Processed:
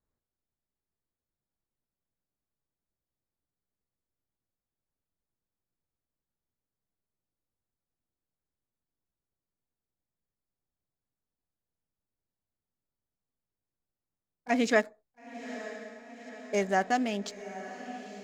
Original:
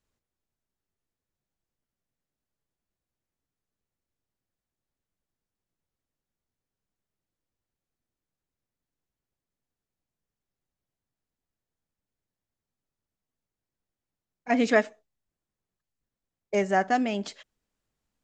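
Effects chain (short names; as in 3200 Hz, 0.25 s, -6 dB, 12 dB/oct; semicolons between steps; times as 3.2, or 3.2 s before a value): Wiener smoothing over 15 samples; high shelf 4600 Hz +10.5 dB; diffused feedback echo 0.917 s, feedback 59%, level -13 dB; gain -3.5 dB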